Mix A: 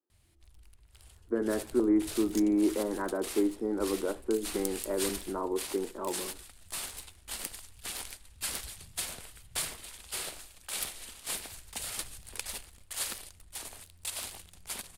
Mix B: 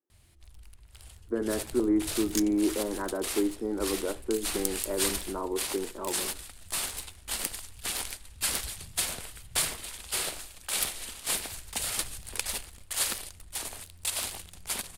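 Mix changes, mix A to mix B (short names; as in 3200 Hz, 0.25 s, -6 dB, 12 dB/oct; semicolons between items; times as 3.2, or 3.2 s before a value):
first sound +6.0 dB; second sound +9.5 dB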